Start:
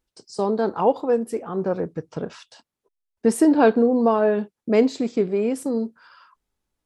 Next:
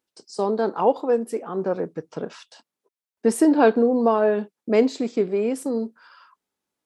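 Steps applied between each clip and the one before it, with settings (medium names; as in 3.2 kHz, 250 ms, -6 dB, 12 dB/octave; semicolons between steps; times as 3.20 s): high-pass 200 Hz 12 dB/octave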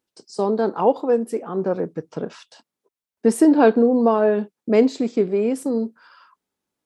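bass shelf 370 Hz +5 dB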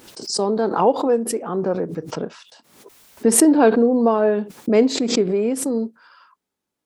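swell ahead of each attack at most 76 dB/s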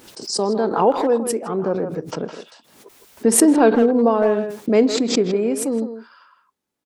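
speakerphone echo 160 ms, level -8 dB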